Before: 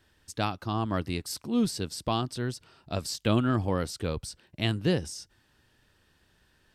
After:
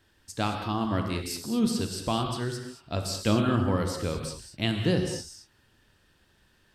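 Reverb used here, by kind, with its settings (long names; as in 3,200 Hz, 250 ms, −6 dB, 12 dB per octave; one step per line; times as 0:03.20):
reverb whose tail is shaped and stops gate 250 ms flat, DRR 3.5 dB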